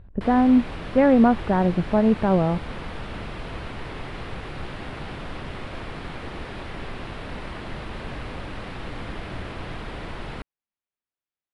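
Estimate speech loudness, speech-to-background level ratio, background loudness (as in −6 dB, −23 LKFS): −20.0 LKFS, 15.5 dB, −35.5 LKFS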